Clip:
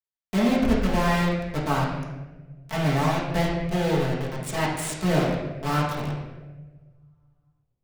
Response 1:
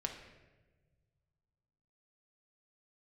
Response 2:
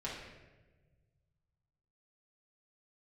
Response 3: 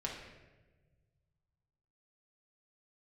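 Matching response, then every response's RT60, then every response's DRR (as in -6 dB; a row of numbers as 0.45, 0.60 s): 2; not exponential, not exponential, not exponential; 2.0, -7.0, -3.0 dB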